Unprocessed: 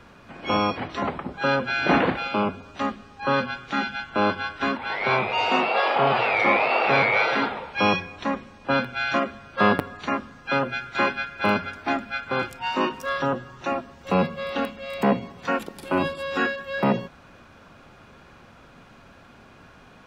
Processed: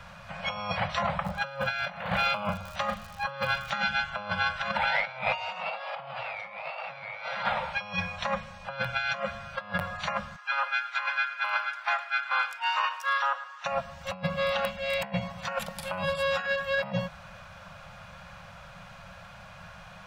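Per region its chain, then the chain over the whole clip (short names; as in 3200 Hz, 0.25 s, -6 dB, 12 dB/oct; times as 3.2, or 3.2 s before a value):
1.24–3.7 doubler 42 ms -10 dB + crackle 150/s -39 dBFS
4.71–5.28 Butterworth band-stop 1100 Hz, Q 7.1 + bell 110 Hz -7.5 dB 0.43 oct + negative-ratio compressor -31 dBFS, ratio -0.5
10.36–13.65 HPF 1000 Hz 24 dB/oct + tilt -2.5 dB/oct + echo 0.109 s -16 dB
14.71–15.18 dynamic EQ 2200 Hz, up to +5 dB, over -39 dBFS, Q 0.97 + notch 1200 Hz, Q 6.3
whole clip: elliptic band-stop 190–550 Hz, stop band 40 dB; negative-ratio compressor -29 dBFS, ratio -0.5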